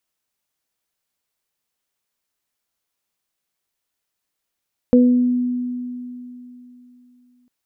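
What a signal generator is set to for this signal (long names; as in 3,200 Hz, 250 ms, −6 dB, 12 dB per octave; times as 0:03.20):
harmonic partials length 2.55 s, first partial 247 Hz, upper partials −3 dB, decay 3.23 s, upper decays 0.54 s, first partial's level −8.5 dB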